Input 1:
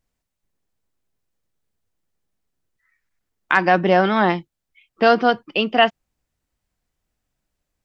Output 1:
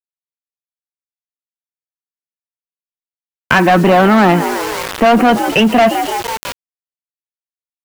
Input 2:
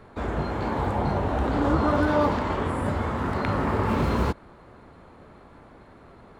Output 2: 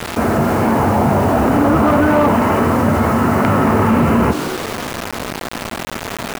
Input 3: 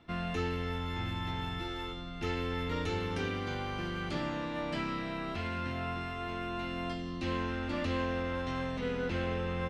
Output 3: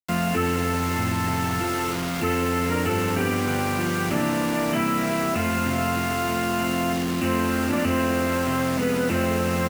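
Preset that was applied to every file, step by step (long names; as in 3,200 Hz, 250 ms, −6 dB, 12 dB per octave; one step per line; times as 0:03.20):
stylus tracing distortion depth 0.12 ms
high-pass filter 82 Hz 24 dB per octave
hollow resonant body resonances 230/670/1,300 Hz, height 7 dB, ringing for 80 ms
harmonic generator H 5 −11 dB, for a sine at 1 dBFS
linear-phase brick-wall low-pass 3,100 Hz
on a send: echo with shifted repeats 166 ms, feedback 55%, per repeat +71 Hz, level −19 dB
on the sum: bit reduction 6 bits
in parallel at −5.5 dB: wave folding −10 dBFS
on the sum: envelope flattener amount 50%
level −2.5 dB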